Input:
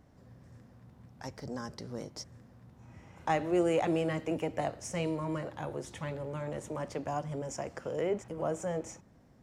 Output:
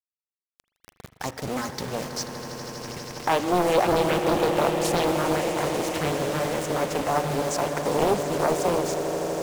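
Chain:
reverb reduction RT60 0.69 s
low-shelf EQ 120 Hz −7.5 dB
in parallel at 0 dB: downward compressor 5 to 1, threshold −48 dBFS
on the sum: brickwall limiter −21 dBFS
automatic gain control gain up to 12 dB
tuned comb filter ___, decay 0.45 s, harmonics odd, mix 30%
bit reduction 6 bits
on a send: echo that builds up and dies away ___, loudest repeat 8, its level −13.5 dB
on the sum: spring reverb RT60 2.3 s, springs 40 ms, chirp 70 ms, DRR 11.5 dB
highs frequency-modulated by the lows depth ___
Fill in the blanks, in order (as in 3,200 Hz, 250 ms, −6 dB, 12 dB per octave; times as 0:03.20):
83 Hz, 81 ms, 0.95 ms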